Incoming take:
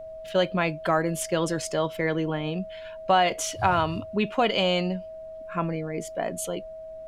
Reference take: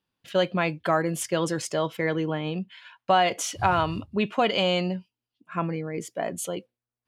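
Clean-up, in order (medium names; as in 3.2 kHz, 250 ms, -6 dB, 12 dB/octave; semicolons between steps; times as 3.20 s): band-stop 640 Hz, Q 30; expander -32 dBFS, range -21 dB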